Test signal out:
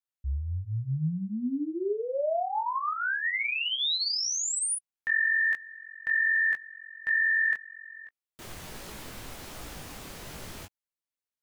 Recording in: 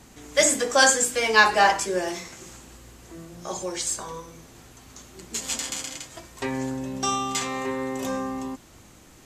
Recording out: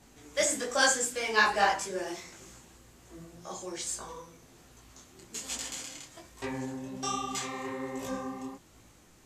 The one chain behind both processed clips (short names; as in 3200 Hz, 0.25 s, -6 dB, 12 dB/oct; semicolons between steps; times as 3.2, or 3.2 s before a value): detuned doubles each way 43 cents; gain -4 dB